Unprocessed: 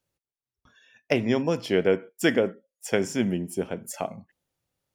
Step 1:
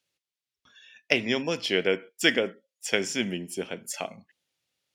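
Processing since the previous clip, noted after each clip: frequency weighting D; trim -3.5 dB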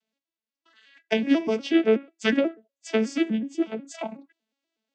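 vocoder on a broken chord major triad, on A3, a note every 122 ms; trim +4.5 dB

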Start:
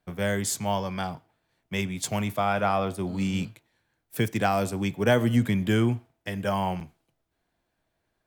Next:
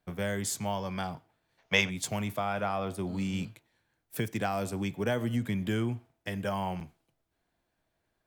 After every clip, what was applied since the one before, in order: compression 2:1, threshold -29 dBFS, peak gain reduction 7.5 dB; time-frequency box 1.59–1.90 s, 410–6900 Hz +12 dB; trim -2 dB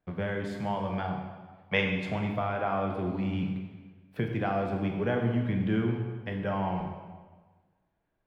in parallel at -7 dB: bit crusher 8-bit; on the sum: distance through air 390 m; reverberation RT60 1.4 s, pre-delay 18 ms, DRR 2.5 dB; trim -1.5 dB

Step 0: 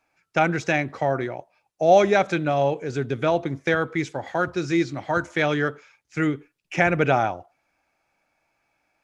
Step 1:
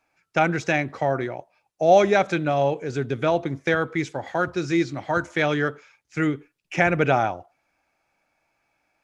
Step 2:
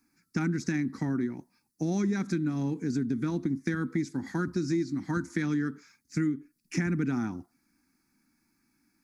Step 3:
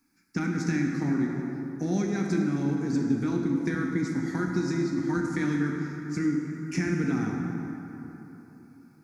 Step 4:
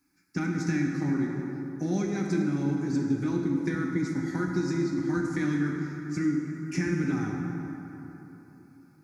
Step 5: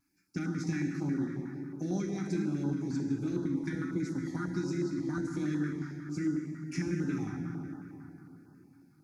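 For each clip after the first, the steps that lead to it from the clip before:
no audible change
FFT filter 130 Hz 0 dB, 240 Hz +15 dB, 350 Hz +2 dB, 610 Hz -26 dB, 960 Hz -9 dB, 1.9 kHz -4 dB, 3 kHz -17 dB, 4.6 kHz +3 dB, 7.1 kHz +2 dB, 11 kHz +9 dB; compression 4:1, threshold -29 dBFS, peak gain reduction 13.5 dB; trim +1.5 dB
plate-style reverb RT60 3.6 s, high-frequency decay 0.5×, DRR 0 dB
comb of notches 230 Hz
vibrato 1.3 Hz 34 cents; step-sequenced notch 11 Hz 500–2300 Hz; trim -4.5 dB

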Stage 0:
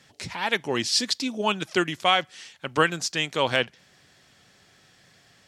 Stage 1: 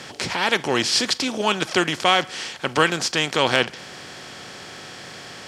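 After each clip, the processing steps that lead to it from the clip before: spectral levelling over time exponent 0.6; trim +1 dB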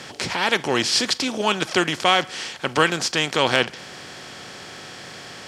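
no audible change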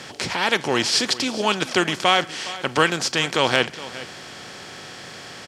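delay 414 ms -16.5 dB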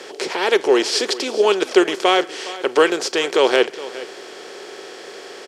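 resonant high-pass 400 Hz, resonance Q 4.9; trim -1 dB

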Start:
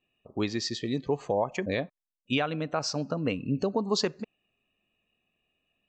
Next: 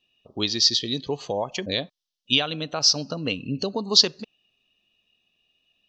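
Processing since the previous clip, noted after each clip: high-order bell 4.2 kHz +15.5 dB 1.3 oct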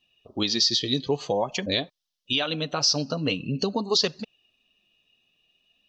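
peak limiter -13 dBFS, peak gain reduction 11 dB; flange 0.48 Hz, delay 0.9 ms, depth 7 ms, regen -38%; trim +5.5 dB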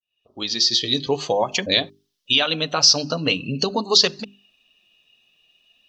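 fade-in on the opening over 1.09 s; tilt shelf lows -3 dB, about 630 Hz; hum notches 50/100/150/200/250/300/350/400 Hz; trim +5 dB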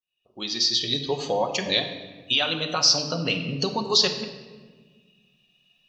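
simulated room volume 1300 m³, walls mixed, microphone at 0.98 m; trim -5 dB

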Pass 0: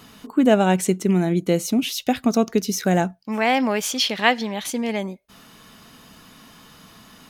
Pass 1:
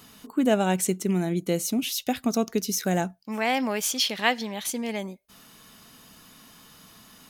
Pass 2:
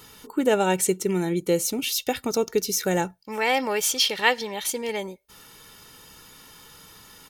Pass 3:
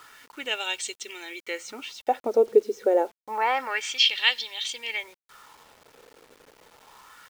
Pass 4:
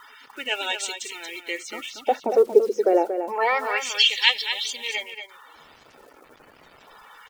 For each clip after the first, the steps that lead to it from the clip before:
treble shelf 5.7 kHz +9 dB; trim -6 dB
comb 2.2 ms, depth 60%; trim +2 dB
wah-wah 0.28 Hz 470–3500 Hz, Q 2.8; FFT band-pass 210–9000 Hz; word length cut 10-bit, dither none; trim +7.5 dB
coarse spectral quantiser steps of 30 dB; vibrato 1.5 Hz 10 cents; delay 232 ms -8.5 dB; trim +3 dB

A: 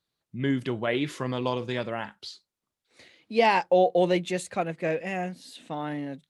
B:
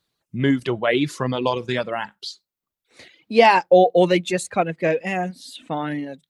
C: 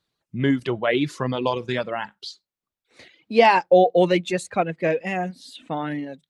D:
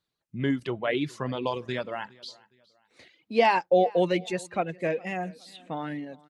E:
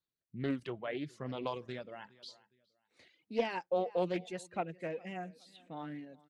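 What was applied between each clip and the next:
reverb removal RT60 1 s; trim +8 dB
treble shelf 8.4 kHz -8.5 dB; trim -1.5 dB
feedback delay 413 ms, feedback 35%, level -24 dB; trim -6 dB
rotary cabinet horn 1.2 Hz, later 5 Hz, at 3.26 s; loudspeaker Doppler distortion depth 0.28 ms; trim -8 dB

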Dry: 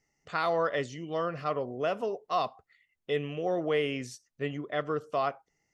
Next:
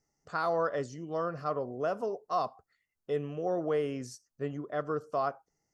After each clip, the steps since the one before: high-order bell 2.7 kHz -11.5 dB 1.2 oct; trim -1.5 dB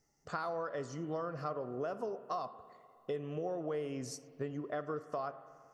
compression 6:1, threshold -39 dBFS, peak gain reduction 13.5 dB; spring tank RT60 2.4 s, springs 46/51 ms, chirp 55 ms, DRR 13 dB; trim +3.5 dB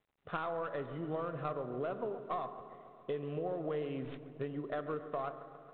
tracing distortion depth 0.13 ms; feedback echo behind a low-pass 138 ms, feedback 72%, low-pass 1.8 kHz, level -14 dB; G.726 32 kbps 8 kHz

